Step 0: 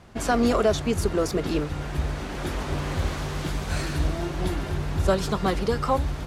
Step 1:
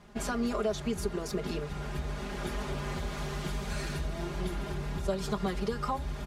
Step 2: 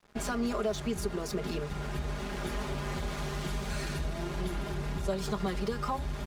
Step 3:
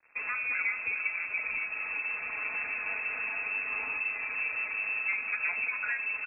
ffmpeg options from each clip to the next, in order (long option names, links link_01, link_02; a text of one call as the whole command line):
ffmpeg -i in.wav -af "acompressor=threshold=-25dB:ratio=3,aecho=1:1:4.9:0.78,volume=-6.5dB" out.wav
ffmpeg -i in.wav -filter_complex "[0:a]asplit=2[link_01][link_02];[link_02]alimiter=level_in=6dB:limit=-24dB:level=0:latency=1:release=29,volume=-6dB,volume=0dB[link_03];[link_01][link_03]amix=inputs=2:normalize=0,aeval=exprs='sgn(val(0))*max(abs(val(0))-0.00531,0)':channel_layout=same,volume=-3dB" out.wav
ffmpeg -i in.wav -filter_complex "[0:a]bandreject=frequency=58.47:width_type=h:width=4,bandreject=frequency=116.94:width_type=h:width=4,bandreject=frequency=175.41:width_type=h:width=4,bandreject=frequency=233.88:width_type=h:width=4,bandreject=frequency=292.35:width_type=h:width=4,bandreject=frequency=350.82:width_type=h:width=4,bandreject=frequency=409.29:width_type=h:width=4,bandreject=frequency=467.76:width_type=h:width=4,bandreject=frequency=526.23:width_type=h:width=4,bandreject=frequency=584.7:width_type=h:width=4,bandreject=frequency=643.17:width_type=h:width=4,bandreject=frequency=701.64:width_type=h:width=4,bandreject=frequency=760.11:width_type=h:width=4,bandreject=frequency=818.58:width_type=h:width=4,bandreject=frequency=877.05:width_type=h:width=4,bandreject=frequency=935.52:width_type=h:width=4,bandreject=frequency=993.99:width_type=h:width=4,bandreject=frequency=1052.46:width_type=h:width=4,bandreject=frequency=1110.93:width_type=h:width=4,bandreject=frequency=1169.4:width_type=h:width=4,bandreject=frequency=1227.87:width_type=h:width=4,bandreject=frequency=1286.34:width_type=h:width=4,bandreject=frequency=1344.81:width_type=h:width=4,bandreject=frequency=1403.28:width_type=h:width=4,bandreject=frequency=1461.75:width_type=h:width=4,bandreject=frequency=1520.22:width_type=h:width=4,bandreject=frequency=1578.69:width_type=h:width=4,bandreject=frequency=1637.16:width_type=h:width=4,bandreject=frequency=1695.63:width_type=h:width=4,bandreject=frequency=1754.1:width_type=h:width=4,bandreject=frequency=1812.57:width_type=h:width=4,bandreject=frequency=1871.04:width_type=h:width=4,bandreject=frequency=1929.51:width_type=h:width=4,bandreject=frequency=1987.98:width_type=h:width=4,bandreject=frequency=2046.45:width_type=h:width=4,bandreject=frequency=2104.92:width_type=h:width=4,bandreject=frequency=2163.39:width_type=h:width=4,lowpass=frequency=2300:width_type=q:width=0.5098,lowpass=frequency=2300:width_type=q:width=0.6013,lowpass=frequency=2300:width_type=q:width=0.9,lowpass=frequency=2300:width_type=q:width=2.563,afreqshift=-2700,asplit=2[link_01][link_02];[link_02]adelay=408.2,volume=-8dB,highshelf=frequency=4000:gain=-9.18[link_03];[link_01][link_03]amix=inputs=2:normalize=0" out.wav